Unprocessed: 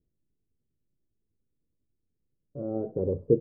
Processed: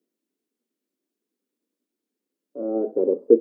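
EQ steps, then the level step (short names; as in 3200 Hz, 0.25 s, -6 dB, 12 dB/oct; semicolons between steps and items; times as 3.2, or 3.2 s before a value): steep high-pass 230 Hz 48 dB/oct; dynamic EQ 390 Hz, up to +3 dB, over -37 dBFS, Q 3.2; +6.5 dB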